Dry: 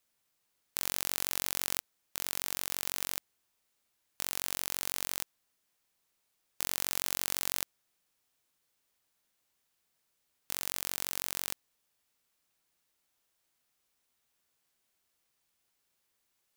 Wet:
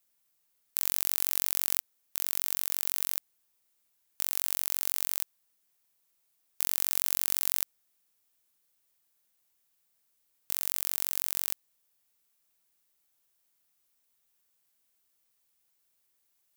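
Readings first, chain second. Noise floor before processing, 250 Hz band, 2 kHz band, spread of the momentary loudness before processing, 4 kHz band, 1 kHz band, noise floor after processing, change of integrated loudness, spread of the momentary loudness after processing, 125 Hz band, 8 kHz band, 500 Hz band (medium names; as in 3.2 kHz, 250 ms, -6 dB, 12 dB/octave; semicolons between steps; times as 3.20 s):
-79 dBFS, -3.0 dB, -2.5 dB, 8 LU, -1.5 dB, -3.0 dB, -74 dBFS, +5.0 dB, 8 LU, no reading, +2.0 dB, -3.0 dB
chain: treble shelf 8.8 kHz +11 dB; trim -3 dB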